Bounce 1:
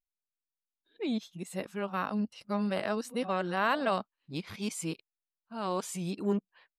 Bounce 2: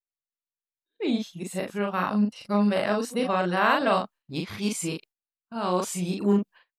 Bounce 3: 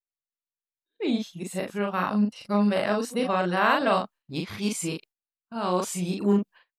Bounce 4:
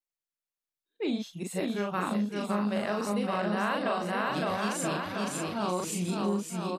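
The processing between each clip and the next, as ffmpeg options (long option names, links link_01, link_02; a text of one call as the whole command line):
ffmpeg -i in.wav -filter_complex "[0:a]agate=range=-21dB:threshold=-54dB:ratio=16:detection=peak,asplit=2[link_01][link_02];[link_02]adelay=39,volume=-3dB[link_03];[link_01][link_03]amix=inputs=2:normalize=0,volume=5dB" out.wav
ffmpeg -i in.wav -af anull out.wav
ffmpeg -i in.wav -af "aecho=1:1:560|980|1295|1531|1708:0.631|0.398|0.251|0.158|0.1,acompressor=threshold=-25dB:ratio=4,volume=-1.5dB" out.wav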